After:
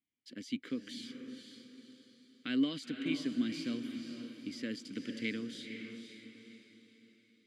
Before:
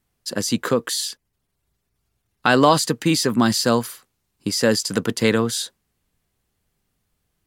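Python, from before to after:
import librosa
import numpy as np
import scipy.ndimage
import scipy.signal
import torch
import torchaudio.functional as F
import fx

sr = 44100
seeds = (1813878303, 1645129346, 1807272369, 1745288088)

p1 = fx.vowel_filter(x, sr, vowel='i')
p2 = fx.peak_eq(p1, sr, hz=270.0, db=-4.5, octaves=1.5)
p3 = p2 + fx.echo_diffused(p2, sr, ms=496, feedback_pct=42, wet_db=-7, dry=0)
y = p3 * librosa.db_to_amplitude(-4.0)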